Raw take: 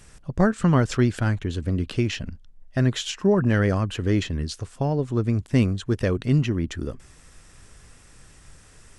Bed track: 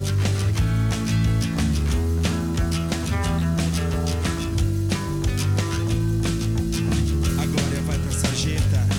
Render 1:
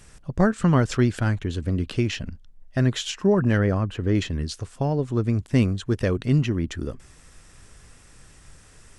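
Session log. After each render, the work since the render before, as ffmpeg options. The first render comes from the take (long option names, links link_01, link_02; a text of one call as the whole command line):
ffmpeg -i in.wav -filter_complex "[0:a]asettb=1/sr,asplit=3[link_01][link_02][link_03];[link_01]atrim=end=3.574[link_04];[link_02]atrim=start=3.57:end=4.15,asetpts=PTS-STARTPTS,afade=type=in:duration=0.004:curve=qsin,afade=type=out:start_time=0.576:duration=0.004:curve=qsin,highshelf=frequency=2800:gain=-11[link_05];[link_03]atrim=start=4.146[link_06];[link_04][link_05]acrossfade=duration=0.004:curve1=hsin:curve2=qsin[link_07];[link_07][link_06]acrossfade=duration=0.004:curve1=qsin:curve2=hsin" out.wav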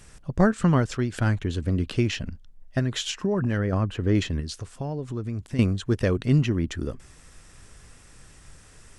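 ffmpeg -i in.wav -filter_complex "[0:a]asettb=1/sr,asplit=3[link_01][link_02][link_03];[link_01]atrim=end=2.794[link_04];[link_02]atrim=start=2.79:end=3.73,asetpts=PTS-STARTPTS,afade=type=in:duration=0.004:curve=qsin,afade=type=out:start_time=0.936:duration=0.004:curve=qsin,acompressor=threshold=-20dB:ratio=6:attack=3.2:release=140:knee=1:detection=peak[link_05];[link_03]atrim=start=3.726[link_06];[link_04][link_05]acrossfade=duration=0.004:curve1=hsin:curve2=qsin[link_07];[link_07][link_06]acrossfade=duration=0.004:curve1=qsin:curve2=hsin,asettb=1/sr,asplit=3[link_08][link_09][link_10];[link_08]atrim=end=4.404[link_11];[link_09]atrim=start=4.4:end=5.59,asetpts=PTS-STARTPTS,afade=type=in:duration=0.004:curve=qsin,afade=type=out:start_time=1.186:duration=0.004:curve=qsin,acompressor=threshold=-30dB:ratio=2.5:attack=3.2:release=140:knee=1:detection=peak[link_12];[link_10]atrim=start=5.586[link_13];[link_11][link_12]acrossfade=duration=0.004:curve1=hsin:curve2=qsin[link_14];[link_14][link_13]acrossfade=duration=0.004:curve1=qsin:curve2=hsin,asplit=2[link_15][link_16];[link_15]atrim=end=1.12,asetpts=PTS-STARTPTS,afade=type=out:start_time=0.59:duration=0.53:silence=0.375837[link_17];[link_16]atrim=start=1.12,asetpts=PTS-STARTPTS,afade=type=in:duration=0.004:curve=hsin:silence=0.375837[link_18];[link_17][link_18]concat=n=2:v=0:a=1" out.wav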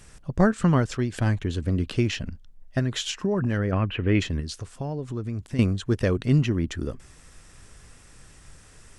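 ffmpeg -i in.wav -filter_complex "[0:a]asettb=1/sr,asplit=3[link_01][link_02][link_03];[link_01]atrim=end=0.984[link_04];[link_02]atrim=start=0.98:end=1.4,asetpts=PTS-STARTPTS,afade=type=in:duration=0.004:curve=qsin,afade=type=out:start_time=0.416:duration=0.004:curve=qsin,bandreject=frequency=1400:width=7.3[link_05];[link_03]atrim=start=1.396[link_06];[link_04][link_05]acrossfade=duration=0.004:curve1=hsin:curve2=qsin[link_07];[link_07][link_06]acrossfade=duration=0.004:curve1=qsin:curve2=hsin,asettb=1/sr,asplit=3[link_08][link_09][link_10];[link_08]atrim=end=3.714[link_11];[link_09]atrim=start=3.71:end=4.2,asetpts=PTS-STARTPTS,afade=type=in:duration=0.004:curve=qsin,afade=type=out:start_time=0.486:duration=0.004:curve=qsin,lowpass=frequency=2600:width_type=q:width=3.4[link_12];[link_10]atrim=start=4.196[link_13];[link_11][link_12]acrossfade=duration=0.004:curve1=hsin:curve2=qsin[link_14];[link_14][link_13]acrossfade=duration=0.004:curve1=qsin:curve2=hsin" out.wav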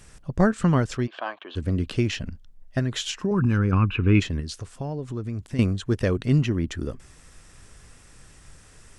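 ffmpeg -i in.wav -filter_complex "[0:a]asplit=3[link_01][link_02][link_03];[link_01]afade=type=out:start_time=1.06:duration=0.02[link_04];[link_02]highpass=frequency=430:width=0.5412,highpass=frequency=430:width=1.3066,equalizer=frequency=450:width_type=q:width=4:gain=-9,equalizer=frequency=670:width_type=q:width=4:gain=5,equalizer=frequency=1100:width_type=q:width=4:gain=9,equalizer=frequency=2000:width_type=q:width=4:gain=-8,equalizer=frequency=3200:width_type=q:width=4:gain=4,lowpass=frequency=3500:width=0.5412,lowpass=frequency=3500:width=1.3066,afade=type=in:start_time=1.06:duration=0.02,afade=type=out:start_time=1.55:duration=0.02[link_05];[link_03]afade=type=in:start_time=1.55:duration=0.02[link_06];[link_04][link_05][link_06]amix=inputs=3:normalize=0,asettb=1/sr,asplit=3[link_07][link_08][link_09];[link_07]atrim=end=3.314[link_10];[link_08]atrim=start=3.31:end=4.2,asetpts=PTS-STARTPTS,afade=type=in:duration=0.004:curve=qsin,afade=type=out:start_time=0.886:duration=0.004:curve=qsin,aecho=1:1:0.8:0.79,atrim=end_sample=39249[link_11];[link_09]atrim=start=4.196[link_12];[link_10][link_11]acrossfade=duration=0.004:curve1=hsin:curve2=qsin[link_13];[link_13][link_12]acrossfade=duration=0.004:curve1=qsin:curve2=hsin" out.wav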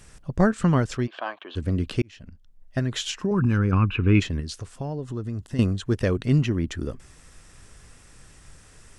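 ffmpeg -i in.wav -filter_complex "[0:a]asettb=1/sr,asplit=3[link_01][link_02][link_03];[link_01]atrim=end=4.894[link_04];[link_02]atrim=start=4.89:end=5.72,asetpts=PTS-STARTPTS,afade=type=in:duration=0.004:curve=qsin,afade=type=out:start_time=0.826:duration=0.004:curve=qsin,asuperstop=centerf=2300:order=4:qfactor=6.4[link_05];[link_03]atrim=start=5.716[link_06];[link_04][link_05]acrossfade=duration=0.004:curve1=hsin:curve2=qsin[link_07];[link_07][link_06]acrossfade=duration=0.004:curve1=qsin:curve2=hsin,asplit=2[link_08][link_09];[link_08]atrim=end=2.02,asetpts=PTS-STARTPTS,afade=type=out:start_time=2.016:duration=0.004:curve=hsin[link_10];[link_09]atrim=start=2.02,asetpts=PTS-STARTPTS,afade=type=in:duration=0.85[link_11];[link_10][link_11]concat=n=2:v=0:a=1" out.wav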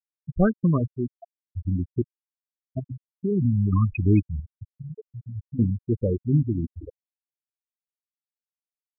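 ffmpeg -i in.wav -af "bandreject=frequency=128.3:width_type=h:width=4,bandreject=frequency=256.6:width_type=h:width=4,afftfilt=real='re*gte(hypot(re,im),0.282)':imag='im*gte(hypot(re,im),0.282)':win_size=1024:overlap=0.75" out.wav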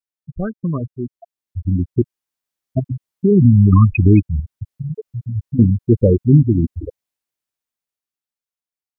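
ffmpeg -i in.wav -af "alimiter=limit=-13dB:level=0:latency=1:release=328,dynaudnorm=framelen=270:gausssize=13:maxgain=16.5dB" out.wav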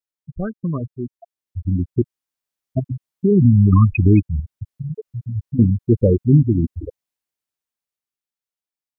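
ffmpeg -i in.wav -af "volume=-2dB" out.wav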